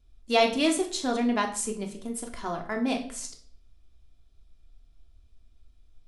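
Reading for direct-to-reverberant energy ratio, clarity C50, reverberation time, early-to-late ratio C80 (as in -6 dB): 2.0 dB, 10.5 dB, 0.55 s, 14.5 dB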